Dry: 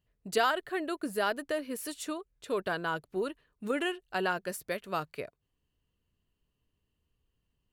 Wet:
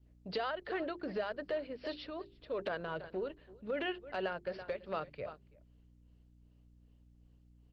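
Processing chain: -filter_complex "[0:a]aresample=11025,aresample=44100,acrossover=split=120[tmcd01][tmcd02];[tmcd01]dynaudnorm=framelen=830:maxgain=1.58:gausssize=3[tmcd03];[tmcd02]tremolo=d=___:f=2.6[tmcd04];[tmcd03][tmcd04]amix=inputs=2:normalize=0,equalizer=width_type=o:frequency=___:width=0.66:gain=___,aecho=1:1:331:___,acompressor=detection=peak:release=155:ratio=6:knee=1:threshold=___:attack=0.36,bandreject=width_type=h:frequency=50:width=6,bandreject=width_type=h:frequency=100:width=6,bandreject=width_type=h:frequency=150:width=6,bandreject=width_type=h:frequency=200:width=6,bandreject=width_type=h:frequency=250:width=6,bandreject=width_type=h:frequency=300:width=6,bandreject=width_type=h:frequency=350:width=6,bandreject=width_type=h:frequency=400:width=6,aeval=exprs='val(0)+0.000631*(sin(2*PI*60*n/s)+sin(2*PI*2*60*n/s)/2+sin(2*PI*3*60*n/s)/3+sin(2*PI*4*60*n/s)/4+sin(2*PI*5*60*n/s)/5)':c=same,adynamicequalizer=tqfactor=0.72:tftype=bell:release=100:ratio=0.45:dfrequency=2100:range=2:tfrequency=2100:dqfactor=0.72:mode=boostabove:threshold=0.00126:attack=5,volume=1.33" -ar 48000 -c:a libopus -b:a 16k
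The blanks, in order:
0.84, 550, 11, 0.0631, 0.02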